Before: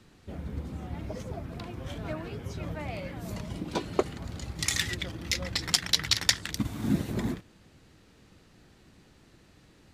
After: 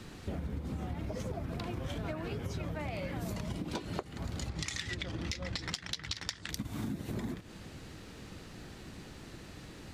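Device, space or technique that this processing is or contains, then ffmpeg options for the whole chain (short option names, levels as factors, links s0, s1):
serial compression, peaks first: -filter_complex "[0:a]asettb=1/sr,asplit=3[s0][s1][s2];[s0]atrim=end=4.494[s3];[s1]atrim=start=4.49:end=6.49,asetpts=PTS-STARTPTS,afade=t=in:d=0.004:c=qsin,afade=t=out:st=1.996:d=0.004:c=qsin,lowpass=7000[s4];[s2]atrim=start=6.486[s5];[s3][s4]acrossfade=d=0.004:c1=hsin:c2=qsin[s6];[s6][s5]acrossfade=d=0.004:c1=qsin:c2=hsin,acompressor=threshold=0.0126:ratio=6,acompressor=threshold=0.00501:ratio=2.5,volume=2.99"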